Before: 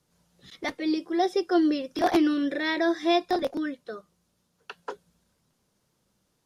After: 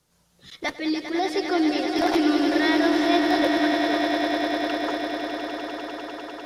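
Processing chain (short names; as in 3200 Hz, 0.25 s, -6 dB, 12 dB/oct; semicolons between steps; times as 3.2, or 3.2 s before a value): limiter -18.5 dBFS, peak gain reduction 6 dB; bell 230 Hz -4.5 dB 2.7 oct; swelling echo 0.1 s, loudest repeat 8, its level -8.5 dB; gain +5 dB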